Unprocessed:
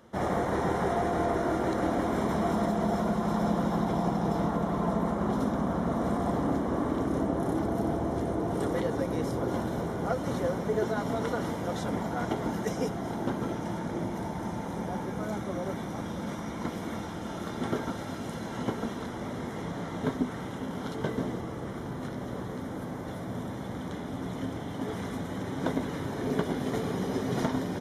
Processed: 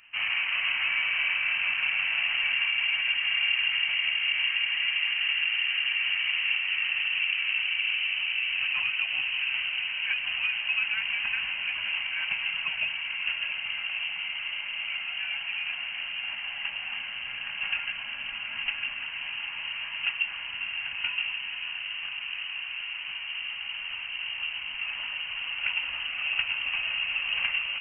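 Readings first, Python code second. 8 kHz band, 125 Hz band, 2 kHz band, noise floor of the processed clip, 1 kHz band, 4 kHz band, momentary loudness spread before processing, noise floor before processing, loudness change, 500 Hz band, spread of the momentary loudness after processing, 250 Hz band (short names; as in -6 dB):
under -30 dB, under -25 dB, +16.5 dB, -37 dBFS, -12.0 dB, +20.0 dB, 8 LU, -37 dBFS, +4.0 dB, under -25 dB, 8 LU, under -30 dB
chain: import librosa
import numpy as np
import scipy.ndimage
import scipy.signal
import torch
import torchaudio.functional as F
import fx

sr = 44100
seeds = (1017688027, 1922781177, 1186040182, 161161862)

y = fx.freq_invert(x, sr, carrier_hz=3000)
y = fx.echo_diffused(y, sr, ms=582, feedback_pct=46, wet_db=-11)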